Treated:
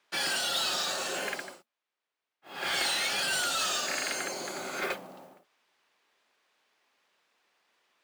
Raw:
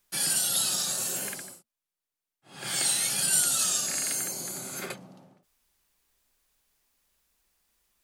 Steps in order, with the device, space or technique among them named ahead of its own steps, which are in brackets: carbon microphone (BPF 390–3200 Hz; soft clip -31.5 dBFS, distortion -17 dB; modulation noise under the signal 17 dB); gain +8.5 dB

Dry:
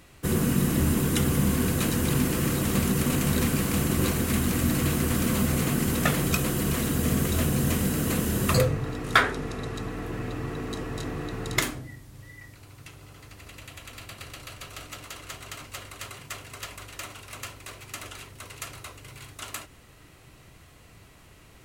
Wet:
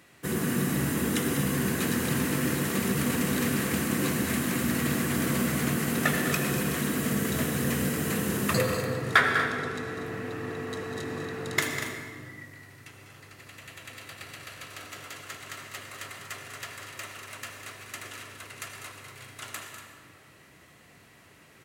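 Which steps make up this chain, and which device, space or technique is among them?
stadium PA (HPF 140 Hz 12 dB/oct; bell 1800 Hz +6 dB 0.48 oct; loudspeakers at several distances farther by 68 m -10 dB, 82 m -12 dB; reverb RT60 2.0 s, pre-delay 74 ms, DRR 5 dB); gain -3.5 dB

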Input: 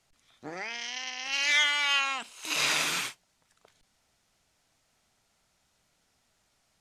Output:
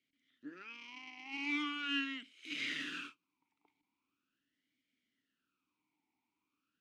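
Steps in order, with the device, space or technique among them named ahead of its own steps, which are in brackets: talk box (tube stage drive 19 dB, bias 0.65; vowel sweep i-u 0.41 Hz); gain +5 dB

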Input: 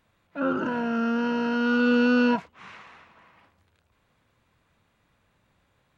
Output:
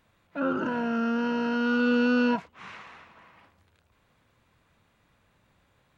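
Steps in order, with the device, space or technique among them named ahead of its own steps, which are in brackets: parallel compression (in parallel at -1 dB: compressor, threshold -32 dBFS, peak gain reduction 14 dB); on the sum: gain -4 dB

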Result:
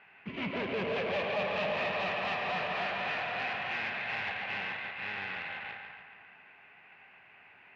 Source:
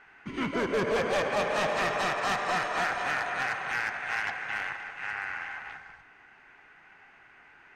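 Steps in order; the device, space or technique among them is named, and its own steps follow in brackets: analogue delay pedal into a guitar amplifier (analogue delay 0.141 s, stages 4096, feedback 64%, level -8 dB; tube stage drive 31 dB, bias 0.6; speaker cabinet 92–4000 Hz, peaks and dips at 95 Hz +4 dB, 190 Hz +5 dB, 310 Hz -6 dB, 620 Hz +4 dB, 1400 Hz -6 dB, 2600 Hz +8 dB)

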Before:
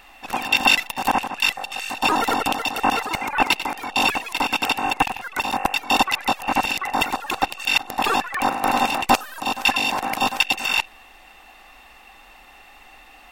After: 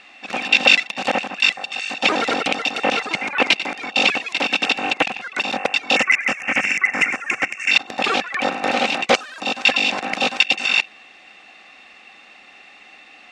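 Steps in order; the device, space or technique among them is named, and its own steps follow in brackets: 5.96–7.71 EQ curve 130 Hz 0 dB, 870 Hz -7 dB, 2200 Hz +12 dB, 4000 Hz -27 dB, 5800 Hz +3 dB; full-range speaker at full volume (Doppler distortion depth 0.39 ms; speaker cabinet 170–7300 Hz, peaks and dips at 200 Hz +4 dB, 920 Hz -10 dB, 2300 Hz +6 dB, 3900 Hz +3 dB); gain +1.5 dB

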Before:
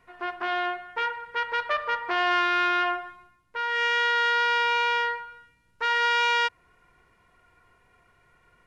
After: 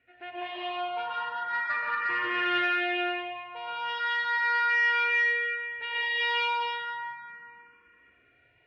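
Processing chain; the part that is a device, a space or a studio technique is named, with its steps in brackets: digital reverb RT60 2.2 s, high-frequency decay 0.7×, pre-delay 80 ms, DRR -6.5 dB; barber-pole phaser into a guitar amplifier (endless phaser +0.36 Hz; soft clip -15.5 dBFS, distortion -14 dB; speaker cabinet 80–4000 Hz, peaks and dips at 130 Hz +6 dB, 260 Hz +5 dB, 420 Hz -5 dB, 1700 Hz +4 dB, 2600 Hz +6 dB); gain -7.5 dB

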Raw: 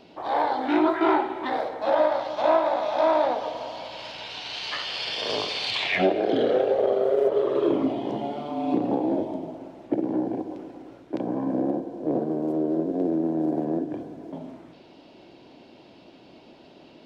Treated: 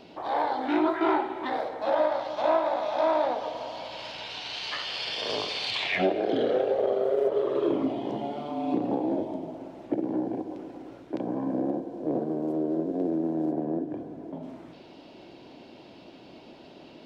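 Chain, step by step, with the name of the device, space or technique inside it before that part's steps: 13.52–14.43 high shelf 2400 Hz -8.5 dB; parallel compression (in parallel at -1 dB: compressor, threshold -41 dBFS, peak gain reduction 23 dB); on the sum: gain -4 dB

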